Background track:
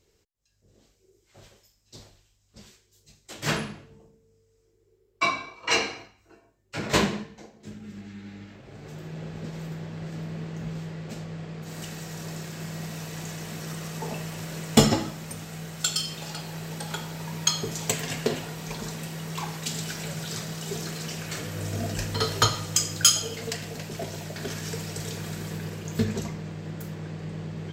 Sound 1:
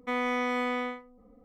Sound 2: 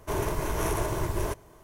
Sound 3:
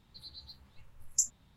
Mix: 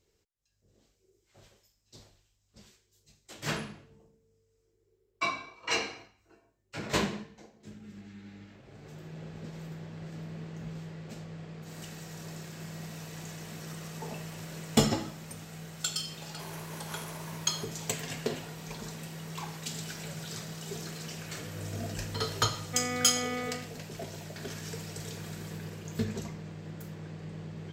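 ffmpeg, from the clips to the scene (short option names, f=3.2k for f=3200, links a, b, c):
-filter_complex "[0:a]volume=-6.5dB[a];[2:a]highpass=f=1.4k:p=1[b];[1:a]asuperstop=centerf=960:order=4:qfactor=5.5[c];[b]atrim=end=1.63,asetpts=PTS-STARTPTS,volume=-9dB,afade=t=in:d=0.004:c=hsin,afade=t=out:st=1.626:d=0.004:c=hsin,adelay=16310[d];[c]atrim=end=1.44,asetpts=PTS-STARTPTS,volume=-4.5dB,afade=t=in:d=0.004:c=hsin,afade=t=out:st=1.436:d=0.004:c=hsin,adelay=22660[e];[a][d][e]amix=inputs=3:normalize=0"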